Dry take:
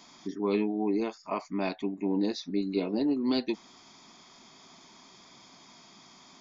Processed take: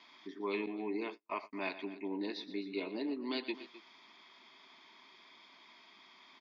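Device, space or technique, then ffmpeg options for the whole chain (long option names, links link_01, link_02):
phone earpiece: -filter_complex "[0:a]highpass=480,equalizer=frequency=510:width_type=q:width=4:gain=-8,equalizer=frequency=750:width_type=q:width=4:gain=-9,equalizer=frequency=1300:width_type=q:width=4:gain=-5,equalizer=frequency=2100:width_type=q:width=4:gain=3,lowpass=frequency=3800:width=0.5412,lowpass=frequency=3800:width=1.3066,aecho=1:1:118|260:0.211|0.141,asettb=1/sr,asplit=3[link_01][link_02][link_03];[link_01]atrim=end=0.664[link_04];[link_02]atrim=start=0.66:end=1.53,asetpts=PTS-STARTPTS,afade=type=in:duration=0.004:curve=qsin,afade=type=out:start_time=0.866:duration=0.004:curve=qsin,agate=range=-42dB:threshold=-42dB:ratio=16:detection=peak[link_05];[link_03]atrim=start=1.526[link_06];[link_04][link_05]acrossfade=duration=0.004:curve1=hsin:curve2=qsin[link_07];[link_07][link_06]acrossfade=duration=0.004:curve1=qsin:curve2=hsin,volume=-1dB"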